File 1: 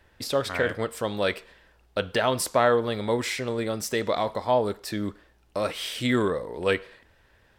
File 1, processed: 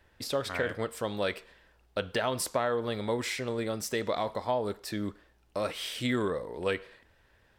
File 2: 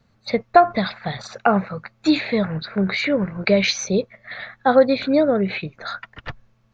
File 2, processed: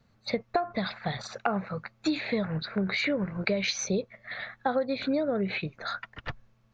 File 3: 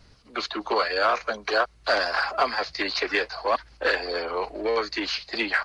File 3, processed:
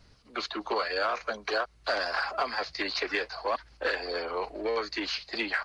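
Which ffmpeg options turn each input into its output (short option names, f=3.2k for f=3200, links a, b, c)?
-af "acompressor=threshold=-20dB:ratio=8,volume=-4dB"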